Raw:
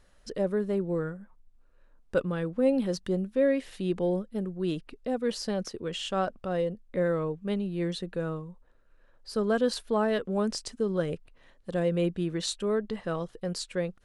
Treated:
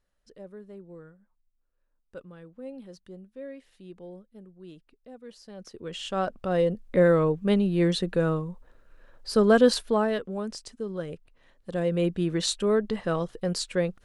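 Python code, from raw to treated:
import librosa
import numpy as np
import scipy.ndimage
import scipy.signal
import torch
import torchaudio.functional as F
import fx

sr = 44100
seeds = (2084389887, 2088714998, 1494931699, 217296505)

y = fx.gain(x, sr, db=fx.line((5.47, -16.0), (5.8, -4.0), (6.81, 7.5), (9.68, 7.5), (10.41, -5.0), (11.14, -5.0), (12.37, 4.5)))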